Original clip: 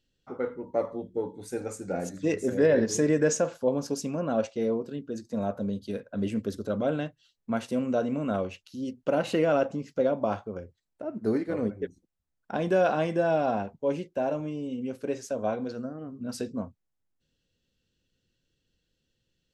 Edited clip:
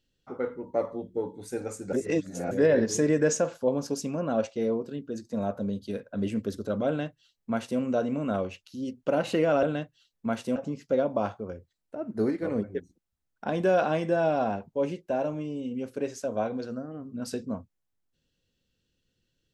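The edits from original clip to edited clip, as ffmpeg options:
-filter_complex "[0:a]asplit=5[a][b][c][d][e];[a]atrim=end=1.932[f];[b]atrim=start=1.928:end=2.512,asetpts=PTS-STARTPTS,areverse[g];[c]atrim=start=2.508:end=9.632[h];[d]atrim=start=6.868:end=7.802[i];[e]atrim=start=9.628[j];[f][g]acrossfade=d=0.004:c1=hsin:c2=hsin[k];[k][h]acrossfade=d=0.004:c1=hsin:c2=hsin[l];[l][i]acrossfade=d=0.004:c1=hsin:c2=hsin[m];[m][j]acrossfade=d=0.004:c1=hsin:c2=hsin"

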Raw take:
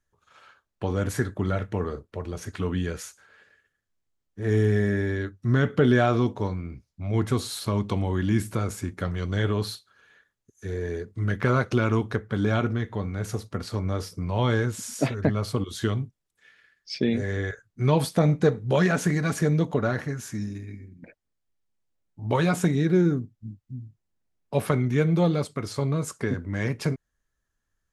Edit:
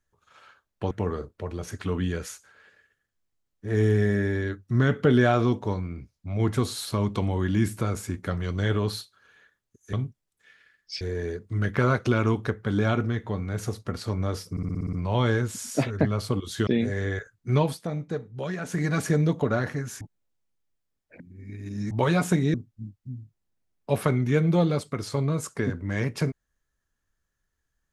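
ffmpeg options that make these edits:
-filter_complex "[0:a]asplit=17[a][b][c][d][e][f][g][h][i][j][k][l][m][n][o][p][q];[a]atrim=end=0.912[r];[b]atrim=start=1.648:end=10.672[s];[c]atrim=start=15.908:end=16.992[t];[d]atrim=start=10.668:end=14.232[u];[e]atrim=start=14.168:end=14.232[v];[f]atrim=start=14.168:end=14.232[w];[g]atrim=start=14.168:end=14.232[x];[h]atrim=start=14.168:end=14.232[y];[i]atrim=start=14.168:end=14.232[z];[j]atrim=start=14.168:end=14.232[aa];[k]atrim=start=14.168:end=15.912[ab];[l]atrim=start=16.988:end=18.2,asetpts=PTS-STARTPTS,afade=t=out:st=0.902:d=0.31:c=qua:silence=0.298538[ac];[m]atrim=start=18.2:end=18.88,asetpts=PTS-STARTPTS,volume=-10.5dB[ad];[n]atrim=start=18.88:end=20.332,asetpts=PTS-STARTPTS,afade=t=in:d=0.31:c=qua:silence=0.298538[ae];[o]atrim=start=20.328:end=22.232,asetpts=PTS-STARTPTS,areverse[af];[p]atrim=start=22.228:end=22.862[ag];[q]atrim=start=23.178[ah];[r][s]acrossfade=d=0.004:c1=hsin:c2=hsin[ai];[ai][t]acrossfade=d=0.004:c1=hsin:c2=hsin[aj];[aj][u]acrossfade=d=0.004:c1=hsin:c2=hsin[ak];[ak][v]acrossfade=d=0.004:c1=hsin:c2=hsin[al];[al][w]acrossfade=d=0.004:c1=hsin:c2=hsin[am];[am][x]acrossfade=d=0.004:c1=hsin:c2=hsin[an];[an][y]acrossfade=d=0.004:c1=hsin:c2=hsin[ao];[ao][z]acrossfade=d=0.004:c1=hsin:c2=hsin[ap];[ap][aa]acrossfade=d=0.004:c1=hsin:c2=hsin[aq];[aq][ab]acrossfade=d=0.004:c1=hsin:c2=hsin[ar];[ac][ad][ae]concat=n=3:v=0:a=1[as];[ar][as]acrossfade=d=0.004:c1=hsin:c2=hsin[at];[at][af]acrossfade=d=0.004:c1=hsin:c2=hsin[au];[au][ag]acrossfade=d=0.004:c1=hsin:c2=hsin[av];[av][ah]acrossfade=d=0.004:c1=hsin:c2=hsin"

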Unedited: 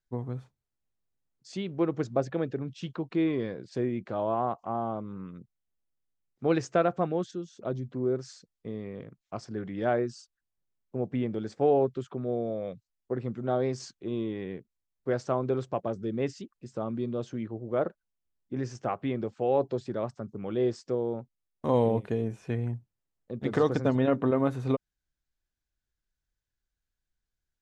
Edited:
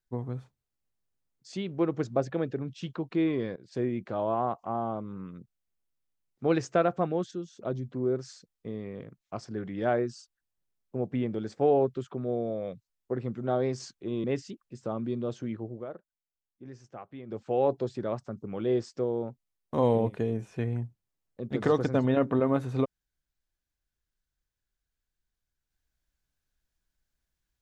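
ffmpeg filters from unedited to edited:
-filter_complex "[0:a]asplit=5[a][b][c][d][e];[a]atrim=end=3.56,asetpts=PTS-STARTPTS,afade=t=out:st=3.556:d=0.004:c=hsin:silence=0.0891251[f];[b]atrim=start=3.56:end=14.242,asetpts=PTS-STARTPTS,afade=t=in:d=0.31:c=qsin:silence=0.0891251[g];[c]atrim=start=16.148:end=17.77,asetpts=PTS-STARTPTS,afade=t=out:st=1.472:d=0.15:silence=0.223872[h];[d]atrim=start=17.77:end=19.17,asetpts=PTS-STARTPTS,volume=-13dB[i];[e]atrim=start=19.17,asetpts=PTS-STARTPTS,afade=t=in:d=0.15:silence=0.223872[j];[f][g]concat=n=2:v=0:a=1[k];[h][i][j]concat=n=3:v=0:a=1[l];[k][l]acrossfade=d=0.004:c1=hsin:c2=hsin"

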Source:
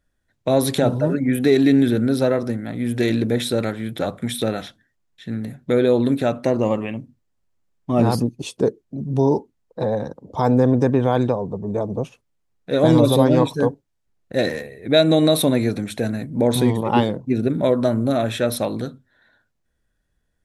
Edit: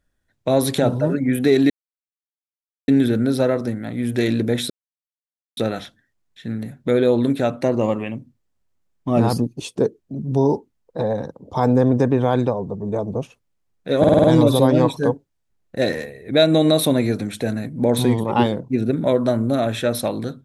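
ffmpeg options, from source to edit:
-filter_complex "[0:a]asplit=9[a][b][c][d][e][f][g][h][i];[a]atrim=end=1.7,asetpts=PTS-STARTPTS,afade=t=out:st=1.696:d=0.004:c=hsin,apad=pad_dur=1.18[j];[b]atrim=start=1.7:end=3.52,asetpts=PTS-STARTPTS,afade=t=in:d=0.004:c=hsin,afade=t=out:st=1.816:d=0.004:c=hsin[k];[c]atrim=start=3.52:end=4.39,asetpts=PTS-STARTPTS,volume=0[l];[d]atrim=start=4.39:end=12.862,asetpts=PTS-STARTPTS,afade=t=in:d=0.004:c=hsin[m];[e]atrim=start=12.808:end=12.862[n];[f]atrim=start=12.808:end=12.862[o];[g]atrim=start=12.808:end=12.862[p];[h]atrim=start=12.808:end=12.862[q];[i]atrim=start=12.808[r];[j][k][l][m]concat=n=4:v=0:a=1[s];[s][n]acrossfade=d=0.004:c1=hsin:c2=hsin[t];[t][o]acrossfade=d=0.004:c1=hsin:c2=hsin[u];[u][p]acrossfade=d=0.004:c1=hsin:c2=hsin[v];[v][q]acrossfade=d=0.004:c1=hsin:c2=hsin[w];[w][r]acrossfade=d=0.004:c1=hsin:c2=hsin"

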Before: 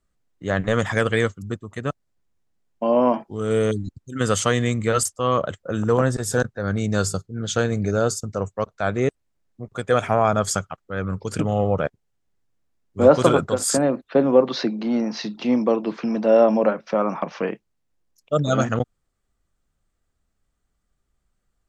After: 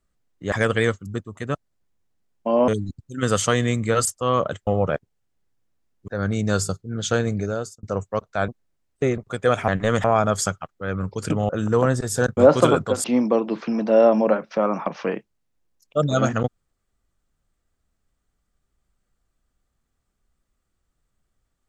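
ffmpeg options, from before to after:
-filter_complex "[0:a]asplit=13[a][b][c][d][e][f][g][h][i][j][k][l][m];[a]atrim=end=0.522[n];[b]atrim=start=0.878:end=3.042[o];[c]atrim=start=3.658:end=5.652[p];[d]atrim=start=11.578:end=12.992[q];[e]atrim=start=6.528:end=8.28,asetpts=PTS-STARTPTS,afade=t=out:st=1.192:d=0.56[r];[f]atrim=start=8.28:end=8.932,asetpts=PTS-STARTPTS,afade=t=in:d=0.004:c=hsin[s];[g]atrim=start=8.928:end=9.632,asetpts=PTS-STARTPTS,areverse[t];[h]atrim=start=9.628:end=10.132[u];[i]atrim=start=0.518:end=0.882[v];[j]atrim=start=10.128:end=11.582[w];[k]atrim=start=5.648:end=6.532[x];[l]atrim=start=12.988:end=13.662[y];[m]atrim=start=15.398[z];[n][o]acrossfade=d=0.004:c1=hsin:c2=hsin[aa];[aa][p]acrossfade=d=0.004:c1=hsin:c2=hsin[ab];[ab][q]acrossfade=d=0.004:c1=hsin:c2=hsin[ac];[r][s]concat=n=2:v=0:a=1[ad];[ac][ad]acrossfade=d=0.004:c1=hsin:c2=hsin[ae];[ae][t]acrossfade=d=0.004:c1=hsin:c2=hsin[af];[af][u]acrossfade=d=0.004:c1=hsin:c2=hsin[ag];[ag][v]acrossfade=d=0.004:c1=hsin:c2=hsin[ah];[ah][w]acrossfade=d=0.004:c1=hsin:c2=hsin[ai];[ai][x]acrossfade=d=0.004:c1=hsin:c2=hsin[aj];[aj][y]acrossfade=d=0.004:c1=hsin:c2=hsin[ak];[ak][z]acrossfade=d=0.004:c1=hsin:c2=hsin"

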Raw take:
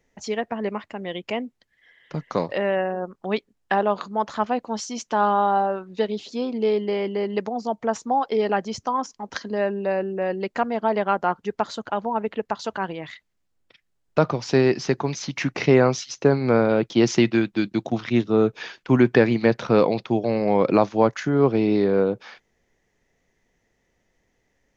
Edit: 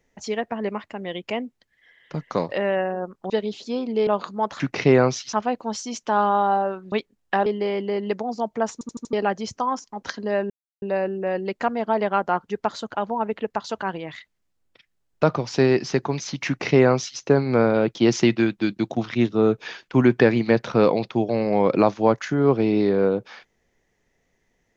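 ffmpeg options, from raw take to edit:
-filter_complex "[0:a]asplit=13[a][b][c][d][e][f][g][h][i][j][k][l][m];[a]atrim=end=3.302[n];[b]atrim=start=5.958:end=6.732[o];[c]atrim=start=3.838:end=4.372[p];[d]atrim=start=15.418:end=16.152[q];[e]atrim=start=4.368:end=5.962[r];[f]atrim=start=3.298:end=3.842[s];[g]atrim=start=6.728:end=8.082[t];[h]atrim=start=7.998:end=8.082[u];[i]atrim=start=7.998:end=8.082[v];[j]atrim=start=7.998:end=8.082[w];[k]atrim=start=7.998:end=8.082[x];[l]atrim=start=8.398:end=9.77,asetpts=PTS-STARTPTS,afade=t=out:st=1.368:d=0.004:c=hsin,apad=pad_dur=0.32[y];[m]atrim=start=9.77,asetpts=PTS-STARTPTS,afade=t=in:d=0.004:c=hsin[z];[n][o]acrossfade=d=0.004:c1=hsin:c2=hsin[aa];[aa][p]acrossfade=d=0.004:c1=hsin:c2=hsin[ab];[ab][q]acrossfade=d=0.004:c1=hsin:c2=hsin[ac];[ac][r]acrossfade=d=0.004:c1=hsin:c2=hsin[ad];[ad][s]acrossfade=d=0.004:c1=hsin:c2=hsin[ae];[ae][t]acrossfade=d=0.004:c1=hsin:c2=hsin[af];[af][u]acrossfade=d=0.004:c1=hsin:c2=hsin[ag];[ag][v]acrossfade=d=0.004:c1=hsin:c2=hsin[ah];[ah][w]acrossfade=d=0.004:c1=hsin:c2=hsin[ai];[ai][x]acrossfade=d=0.004:c1=hsin:c2=hsin[aj];[y][z]concat=n=2:v=0:a=1[ak];[aj][ak]acrossfade=d=0.004:c1=hsin:c2=hsin"

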